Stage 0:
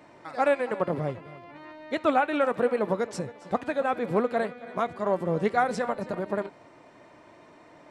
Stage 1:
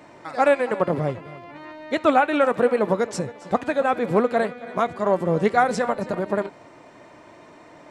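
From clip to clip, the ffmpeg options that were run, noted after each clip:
-af "equalizer=f=7000:w=2.4:g=3,volume=1.88"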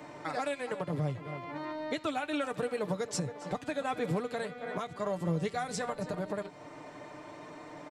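-filter_complex "[0:a]aecho=1:1:6.7:0.48,acrossover=split=150|3000[s0][s1][s2];[s1]acompressor=threshold=0.0355:ratio=6[s3];[s0][s3][s2]amix=inputs=3:normalize=0,alimiter=limit=0.0891:level=0:latency=1:release=475,volume=0.891"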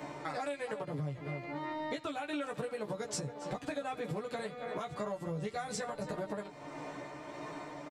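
-filter_complex "[0:a]asplit=2[s0][s1];[s1]adelay=14,volume=0.75[s2];[s0][s2]amix=inputs=2:normalize=0,tremolo=f=1.6:d=0.32,acompressor=threshold=0.0141:ratio=5,volume=1.26"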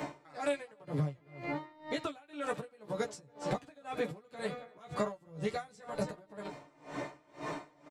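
-af "aeval=exprs='val(0)*pow(10,-27*(0.5-0.5*cos(2*PI*2*n/s))/20)':c=same,volume=2.11"

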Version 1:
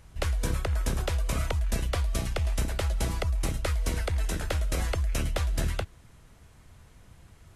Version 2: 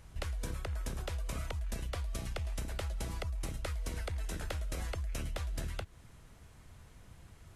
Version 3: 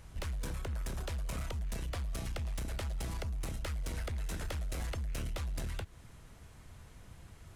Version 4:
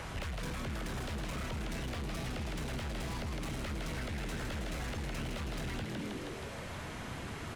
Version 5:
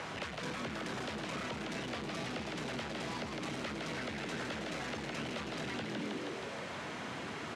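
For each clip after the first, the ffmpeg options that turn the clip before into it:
-af "acompressor=threshold=0.0224:ratio=5,volume=0.794"
-af "volume=59.6,asoftclip=hard,volume=0.0168,volume=1.26"
-filter_complex "[0:a]asplit=8[s0][s1][s2][s3][s4][s5][s6][s7];[s1]adelay=159,afreqshift=85,volume=0.282[s8];[s2]adelay=318,afreqshift=170,volume=0.166[s9];[s3]adelay=477,afreqshift=255,volume=0.0977[s10];[s4]adelay=636,afreqshift=340,volume=0.0582[s11];[s5]adelay=795,afreqshift=425,volume=0.0343[s12];[s6]adelay=954,afreqshift=510,volume=0.0202[s13];[s7]adelay=1113,afreqshift=595,volume=0.0119[s14];[s0][s8][s9][s10][s11][s12][s13][s14]amix=inputs=8:normalize=0,asplit=2[s15][s16];[s16]highpass=f=720:p=1,volume=20,asoftclip=type=tanh:threshold=0.0422[s17];[s15][s17]amix=inputs=2:normalize=0,lowpass=f=1400:p=1,volume=0.501,acrossover=split=250|2000[s18][s19][s20];[s18]acompressor=threshold=0.00708:ratio=4[s21];[s19]acompressor=threshold=0.00282:ratio=4[s22];[s20]acompressor=threshold=0.00282:ratio=4[s23];[s21][s22][s23]amix=inputs=3:normalize=0,volume=1.88"
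-af "highpass=200,lowpass=6500,volume=1.33"

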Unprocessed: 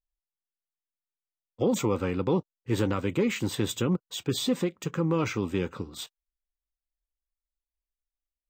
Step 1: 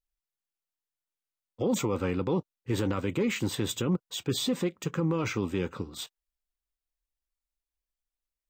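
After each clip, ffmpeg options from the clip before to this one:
-af "alimiter=limit=0.112:level=0:latency=1:release=13"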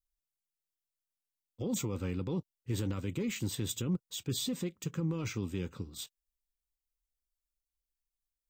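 -af "equalizer=f=900:w=0.31:g=-13"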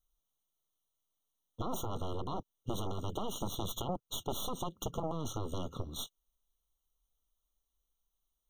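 -af "aeval=exprs='0.075*(cos(1*acos(clip(val(0)/0.075,-1,1)))-cos(1*PI/2))+0.0376*(cos(3*acos(clip(val(0)/0.075,-1,1)))-cos(3*PI/2))+0.0211*(cos(4*acos(clip(val(0)/0.075,-1,1)))-cos(4*PI/2))+0.0335*(cos(6*acos(clip(val(0)/0.075,-1,1)))-cos(6*PI/2))+0.0106*(cos(7*acos(clip(val(0)/0.075,-1,1)))-cos(7*PI/2))':c=same,acompressor=threshold=0.0141:ratio=6,afftfilt=real='re*eq(mod(floor(b*sr/1024/1400),2),0)':imag='im*eq(mod(floor(b*sr/1024/1400),2),0)':win_size=1024:overlap=0.75,volume=1.68"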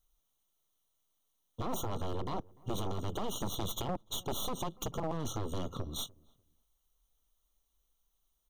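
-filter_complex "[0:a]asplit=2[s0][s1];[s1]acompressor=threshold=0.00631:ratio=10,volume=0.891[s2];[s0][s2]amix=inputs=2:normalize=0,volume=28.2,asoftclip=hard,volume=0.0355,asplit=2[s3][s4];[s4]adelay=296,lowpass=f=820:p=1,volume=0.0708,asplit=2[s5][s6];[s6]adelay=296,lowpass=f=820:p=1,volume=0.25[s7];[s3][s5][s7]amix=inputs=3:normalize=0"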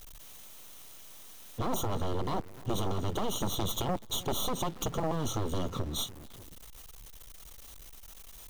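-af "aeval=exprs='val(0)+0.5*0.00501*sgn(val(0))':c=same,volume=1.5"

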